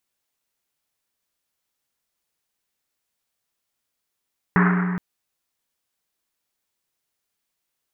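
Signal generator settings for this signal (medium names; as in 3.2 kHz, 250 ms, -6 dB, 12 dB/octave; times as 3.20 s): Risset drum length 0.42 s, pitch 180 Hz, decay 2.87 s, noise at 1.4 kHz, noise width 1.1 kHz, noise 30%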